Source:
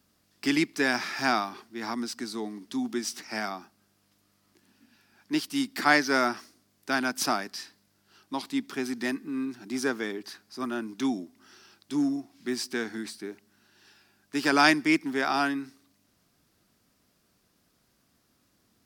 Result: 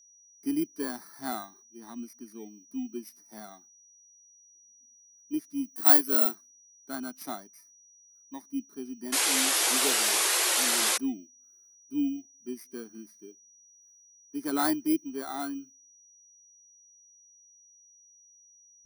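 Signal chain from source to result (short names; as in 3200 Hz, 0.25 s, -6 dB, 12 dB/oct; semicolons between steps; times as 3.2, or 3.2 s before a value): FFT order left unsorted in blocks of 16 samples; 5.64–6.35 high shelf 9000 Hz +10.5 dB; 9.12–10.98 painted sound noise 310–12000 Hz -17 dBFS; whine 5800 Hz -43 dBFS; spectral expander 1.5:1; gain -4.5 dB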